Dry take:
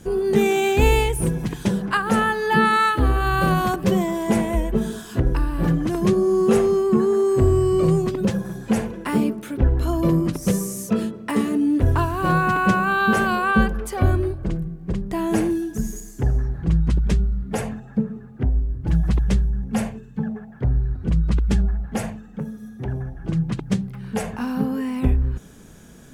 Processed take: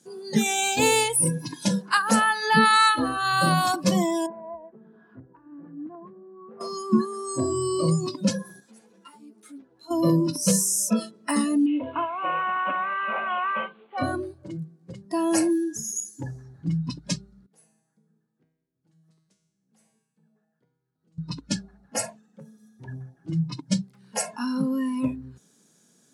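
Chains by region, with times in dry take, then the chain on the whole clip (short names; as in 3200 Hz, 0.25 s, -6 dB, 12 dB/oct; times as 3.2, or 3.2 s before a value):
4.26–6.61 LPF 1700 Hz 24 dB/oct + compressor 2.5:1, threshold -33 dBFS
8.6–9.91 HPF 250 Hz 6 dB/oct + compressor 8:1, threshold -32 dBFS + ensemble effect
11.66–13.98 CVSD 16 kbps + HPF 370 Hz 6 dB/oct + bell 1700 Hz -6.5 dB 0.46 oct
17.46–21.18 compressor 3:1, threshold -30 dBFS + high shelf 7100 Hz +5.5 dB + resonator 160 Hz, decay 0.91 s, mix 90%
whole clip: HPF 160 Hz 24 dB/oct; spectral noise reduction 17 dB; band shelf 6300 Hz +10.5 dB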